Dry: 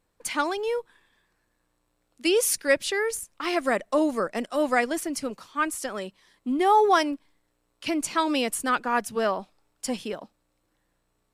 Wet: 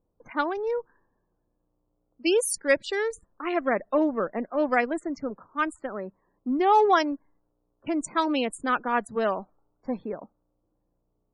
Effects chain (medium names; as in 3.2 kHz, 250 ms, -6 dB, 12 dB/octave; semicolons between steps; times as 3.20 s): local Wiener filter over 15 samples; level-controlled noise filter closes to 710 Hz, open at -22.5 dBFS; loudest bins only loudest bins 64